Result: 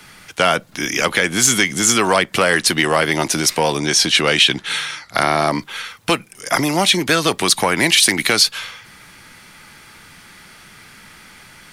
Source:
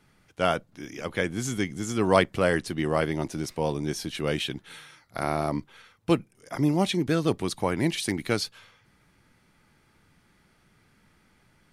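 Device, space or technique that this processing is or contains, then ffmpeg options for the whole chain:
mastering chain: -filter_complex "[0:a]equalizer=frequency=190:width_type=o:width=0.77:gain=2,acrossover=split=120|480[link_01][link_02][link_03];[link_01]acompressor=threshold=-52dB:ratio=4[link_04];[link_02]acompressor=threshold=-30dB:ratio=4[link_05];[link_03]acompressor=threshold=-27dB:ratio=4[link_06];[link_04][link_05][link_06]amix=inputs=3:normalize=0,acompressor=threshold=-31dB:ratio=2,asoftclip=type=tanh:threshold=-21.5dB,tiltshelf=frequency=790:gain=-7,alimiter=level_in=19.5dB:limit=-1dB:release=50:level=0:latency=1,asettb=1/sr,asplit=3[link_07][link_08][link_09];[link_07]atrim=end=3.794[link_10];[link_08]atrim=start=3.79:end=5.51,asetpts=PTS-STARTPTS,afade=type=in:duration=0.004:curve=qsin,afade=type=out:start_time=1.716:duration=0.004:curve=qsin,lowpass=8200[link_11];[link_09]atrim=start=5.506[link_12];[link_10][link_11]acrossfade=duration=0.004:curve1=hsin:curve2=qsin[link_13];[link_13][link_12]acrossfade=duration=0.004:curve1=qsin:curve2=hsin,volume=-1dB"

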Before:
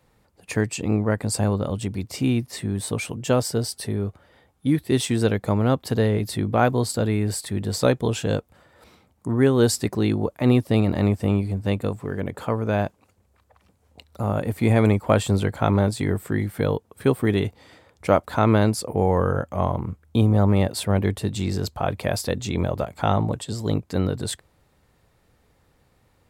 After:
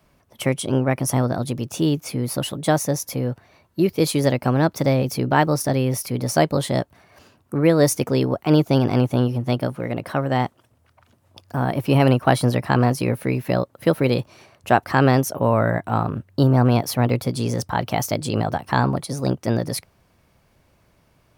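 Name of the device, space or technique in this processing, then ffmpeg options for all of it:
nightcore: -af "asetrate=54243,aresample=44100,volume=2dB"

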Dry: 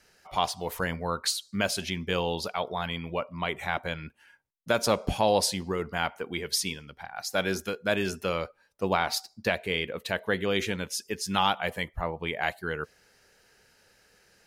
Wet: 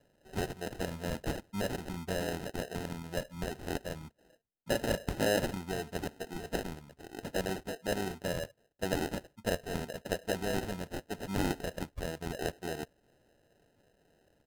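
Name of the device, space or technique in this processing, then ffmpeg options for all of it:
crushed at another speed: -af "asetrate=55125,aresample=44100,acrusher=samples=31:mix=1:aa=0.000001,asetrate=35280,aresample=44100,volume=-6dB"

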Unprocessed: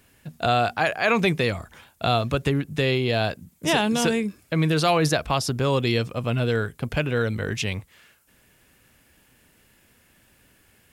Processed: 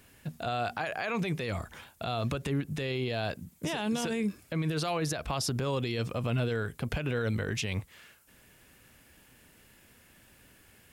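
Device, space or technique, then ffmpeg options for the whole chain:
stacked limiters: -af "alimiter=limit=-11dB:level=0:latency=1:release=250,alimiter=limit=-18dB:level=0:latency=1:release=102,alimiter=limit=-22.5dB:level=0:latency=1:release=52"

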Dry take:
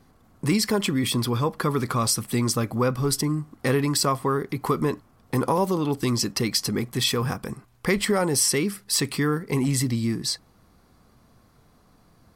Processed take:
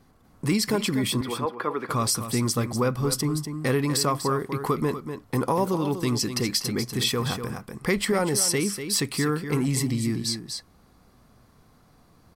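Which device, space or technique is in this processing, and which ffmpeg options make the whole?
ducked delay: -filter_complex "[0:a]asettb=1/sr,asplit=3[link_01][link_02][link_03];[link_01]atrim=end=1.214[link_04];[link_02]atrim=start=1.21:end=1.89,asetpts=PTS-STARTPTS,afade=type=in:duration=0.004:curve=qsin,afade=type=out:start_time=0.676:duration=0.004:curve=qsin,acrossover=split=290 3000:gain=0.0708 1 0.112[link_05][link_06][link_07];[link_05][link_06][link_07]amix=inputs=3:normalize=0[link_08];[link_03]atrim=start=1.886[link_09];[link_04][link_08]acrossfade=duration=0.004:curve1=hsin:curve2=qsin[link_10];[link_10][link_09]acrossfade=duration=0.004:curve1=qsin:curve2=hsin,asplit=3[link_11][link_12][link_13];[link_12]adelay=244,volume=-2.5dB[link_14];[link_13]apad=whole_len=555626[link_15];[link_14][link_15]sidechaincompress=threshold=-28dB:ratio=5:attack=29:release=926[link_16];[link_11][link_16]amix=inputs=2:normalize=0,volume=-1.5dB"

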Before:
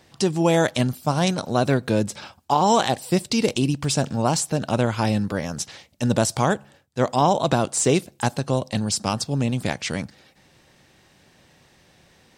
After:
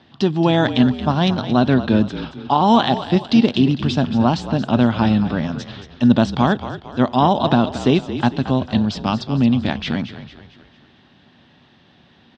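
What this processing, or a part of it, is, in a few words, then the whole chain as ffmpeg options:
frequency-shifting delay pedal into a guitar cabinet: -filter_complex "[0:a]asplit=6[link_01][link_02][link_03][link_04][link_05][link_06];[link_02]adelay=225,afreqshift=-45,volume=-11.5dB[link_07];[link_03]adelay=450,afreqshift=-90,volume=-18.2dB[link_08];[link_04]adelay=675,afreqshift=-135,volume=-25dB[link_09];[link_05]adelay=900,afreqshift=-180,volume=-31.7dB[link_10];[link_06]adelay=1125,afreqshift=-225,volume=-38.5dB[link_11];[link_01][link_07][link_08][link_09][link_10][link_11]amix=inputs=6:normalize=0,highpass=78,equalizer=frequency=240:width_type=q:width=4:gain=8,equalizer=frequency=500:width_type=q:width=4:gain=-7,equalizer=frequency=2200:width_type=q:width=4:gain=-6,equalizer=frequency=3400:width_type=q:width=4:gain=5,lowpass=frequency=3900:width=0.5412,lowpass=frequency=3900:width=1.3066,volume=3.5dB"

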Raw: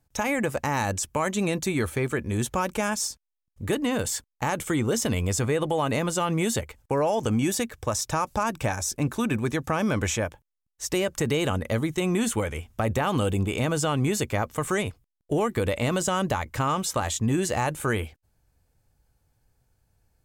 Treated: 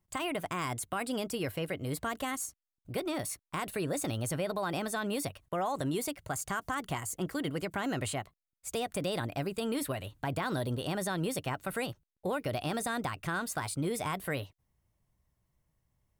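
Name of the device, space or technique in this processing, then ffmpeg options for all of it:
nightcore: -af "asetrate=55125,aresample=44100,volume=-8.5dB"

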